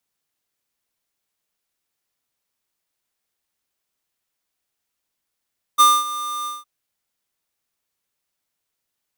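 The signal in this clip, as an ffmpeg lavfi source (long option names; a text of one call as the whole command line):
ffmpeg -f lavfi -i "aevalsrc='0.299*(2*lt(mod(1200*t,1),0.5)-1)':duration=0.862:sample_rate=44100,afade=type=in:duration=0.025,afade=type=out:start_time=0.025:duration=0.231:silence=0.15,afade=type=out:start_time=0.68:duration=0.182" out.wav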